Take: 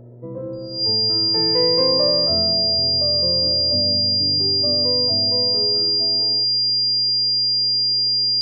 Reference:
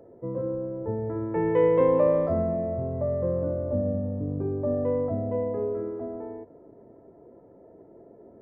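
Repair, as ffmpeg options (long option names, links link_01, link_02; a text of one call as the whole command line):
ffmpeg -i in.wav -af "bandreject=frequency=120.7:width_type=h:width=4,bandreject=frequency=241.4:width_type=h:width=4,bandreject=frequency=362.1:width_type=h:width=4,bandreject=frequency=482.8:width_type=h:width=4,bandreject=frequency=603.5:width_type=h:width=4,bandreject=frequency=4800:width=30" out.wav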